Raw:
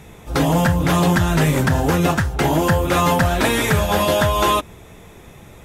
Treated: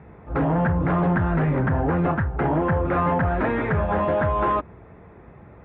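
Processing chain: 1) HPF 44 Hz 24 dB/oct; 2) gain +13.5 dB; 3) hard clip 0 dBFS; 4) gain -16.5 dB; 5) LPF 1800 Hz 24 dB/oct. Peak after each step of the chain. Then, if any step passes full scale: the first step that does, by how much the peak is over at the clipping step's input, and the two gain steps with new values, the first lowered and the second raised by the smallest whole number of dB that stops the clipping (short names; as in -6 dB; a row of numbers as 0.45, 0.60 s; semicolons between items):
-5.0, +8.5, 0.0, -16.5, -14.5 dBFS; step 2, 8.5 dB; step 2 +4.5 dB, step 4 -7.5 dB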